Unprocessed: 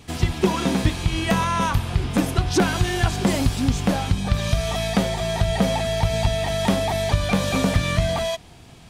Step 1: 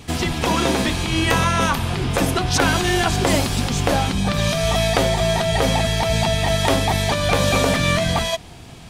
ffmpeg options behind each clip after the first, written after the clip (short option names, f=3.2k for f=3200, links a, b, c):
-af "afftfilt=real='re*lt(hypot(re,im),0.631)':imag='im*lt(hypot(re,im),0.631)':win_size=1024:overlap=0.75,volume=6dB"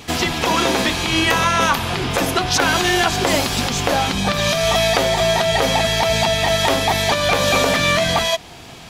-filter_complex "[0:a]lowshelf=f=240:g=-11,asplit=2[a][b];[b]alimiter=limit=-13.5dB:level=0:latency=1:release=298,volume=3dB[c];[a][c]amix=inputs=2:normalize=0,equalizer=f=8.9k:t=o:w=0.3:g=-7,volume=-1.5dB"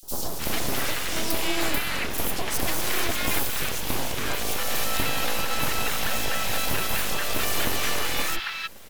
-filter_complex "[0:a]aexciter=amount=6.5:drive=3.1:freq=11k,aeval=exprs='abs(val(0))':c=same,acrossover=split=1100|4400[a][b][c];[a]adelay=30[d];[b]adelay=310[e];[d][e][c]amix=inputs=3:normalize=0,volume=-5dB"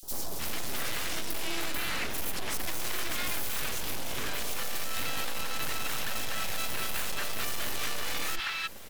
-af "asoftclip=type=tanh:threshold=-26dB"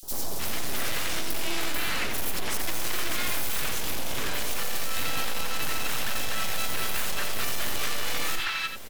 -af "aecho=1:1:87:0.398,volume=3dB"